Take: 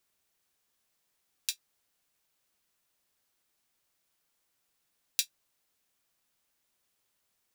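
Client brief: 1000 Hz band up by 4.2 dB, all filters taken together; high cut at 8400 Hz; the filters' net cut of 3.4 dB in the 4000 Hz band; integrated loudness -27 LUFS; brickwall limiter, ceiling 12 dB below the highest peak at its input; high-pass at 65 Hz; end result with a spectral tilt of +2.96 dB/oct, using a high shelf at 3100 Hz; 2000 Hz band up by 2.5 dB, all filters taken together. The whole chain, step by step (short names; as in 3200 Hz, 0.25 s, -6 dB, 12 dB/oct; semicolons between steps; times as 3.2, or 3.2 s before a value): HPF 65 Hz; LPF 8400 Hz; bell 1000 Hz +3.5 dB; bell 2000 Hz +5.5 dB; high shelf 3100 Hz +4 dB; bell 4000 Hz -8.5 dB; gain +19 dB; limiter -0.5 dBFS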